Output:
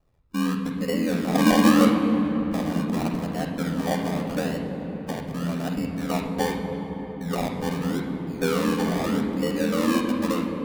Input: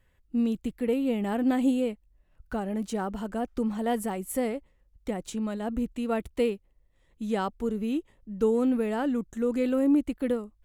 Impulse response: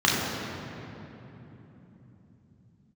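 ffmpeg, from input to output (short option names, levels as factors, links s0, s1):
-filter_complex "[0:a]acrusher=samples=26:mix=1:aa=0.000001:lfo=1:lforange=15.6:lforate=0.82,asettb=1/sr,asplit=3[s0][s1][s2];[s0]atrim=end=1.354[s3];[s1]atrim=start=1.35:end=1.85,asetpts=PTS-STARTPTS,afade=t=in:d=0.004:c=qsin,afade=t=out:st=0.496:d=0.004:c=qsin,acontrast=88[s4];[s2]atrim=start=1.846[s5];[s3][s4]acrossfade=d=0.004:c1=hsin:c2=qsin[s6];[s6][s5]acrossfade=d=0.004:c1=qsin:c2=hsin,aeval=exprs='val(0)*sin(2*PI*41*n/s)':c=same,asplit=2[s7][s8];[1:a]atrim=start_sample=2205,asetrate=29106,aresample=44100[s9];[s8][s9]afir=irnorm=-1:irlink=0,volume=0.0944[s10];[s7][s10]amix=inputs=2:normalize=0"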